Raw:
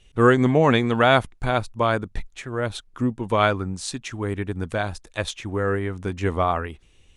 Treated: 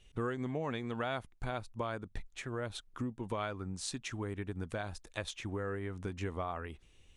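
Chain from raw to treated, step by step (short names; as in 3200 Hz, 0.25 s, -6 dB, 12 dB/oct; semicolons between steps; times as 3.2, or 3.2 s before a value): compressor 4:1, threshold -29 dBFS, peak gain reduction 15.5 dB; gain -6.5 dB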